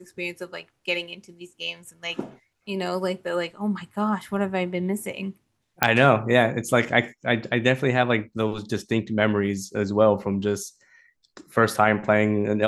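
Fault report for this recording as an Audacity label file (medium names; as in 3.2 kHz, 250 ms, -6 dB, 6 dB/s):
5.830000	5.830000	pop -2 dBFS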